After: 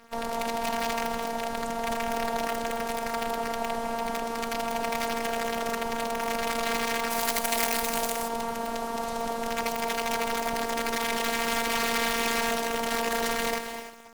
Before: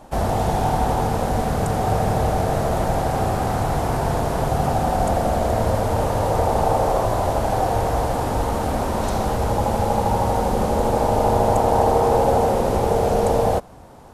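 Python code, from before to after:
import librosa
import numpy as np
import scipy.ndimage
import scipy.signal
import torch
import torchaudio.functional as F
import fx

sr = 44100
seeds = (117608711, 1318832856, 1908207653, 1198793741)

y = fx.low_shelf(x, sr, hz=240.0, db=-11.5)
y = (np.mod(10.0 ** (15.5 / 20.0) * y + 1.0, 2.0) - 1.0) / 10.0 ** (15.5 / 20.0)
y = fx.notch(y, sr, hz=610.0, q=14.0)
y = y + 10.0 ** (-11.5 / 20.0) * np.pad(y, (int(209 * sr / 1000.0), 0))[:len(y)]
y = fx.rev_gated(y, sr, seeds[0], gate_ms=340, shape='rising', drr_db=9.5)
y = y * np.sin(2.0 * np.pi * 93.0 * np.arange(len(y)) / sr)
y = fx.robotise(y, sr, hz=231.0)
y = fx.quant_dither(y, sr, seeds[1], bits=8, dither='none')
y = fx.high_shelf(y, sr, hz=6100.0, db=fx.steps((0.0, -6.0), (7.09, 8.0), (8.27, -3.5)))
y = F.gain(torch.from_numpy(y), -1.0).numpy()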